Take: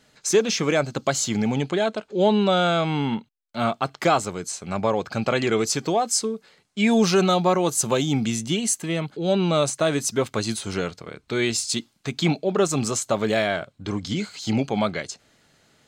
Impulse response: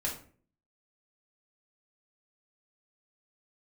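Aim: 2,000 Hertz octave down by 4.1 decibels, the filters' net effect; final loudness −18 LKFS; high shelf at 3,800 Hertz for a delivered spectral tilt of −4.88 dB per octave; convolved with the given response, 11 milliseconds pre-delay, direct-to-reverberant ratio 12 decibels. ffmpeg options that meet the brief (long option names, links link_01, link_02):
-filter_complex "[0:a]equalizer=frequency=2000:width_type=o:gain=-4.5,highshelf=frequency=3800:gain=-3.5,asplit=2[link_01][link_02];[1:a]atrim=start_sample=2205,adelay=11[link_03];[link_02][link_03]afir=irnorm=-1:irlink=0,volume=-16dB[link_04];[link_01][link_04]amix=inputs=2:normalize=0,volume=5.5dB"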